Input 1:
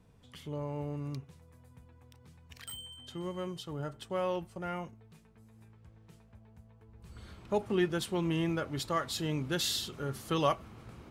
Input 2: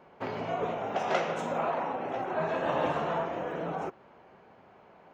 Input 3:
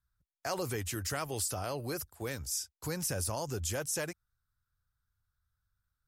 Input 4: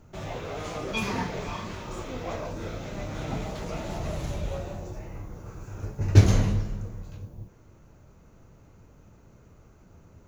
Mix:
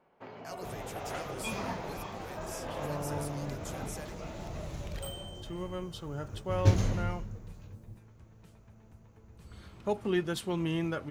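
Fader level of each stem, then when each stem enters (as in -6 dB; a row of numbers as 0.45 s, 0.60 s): -0.5 dB, -12.0 dB, -10.5 dB, -8.0 dB; 2.35 s, 0.00 s, 0.00 s, 0.50 s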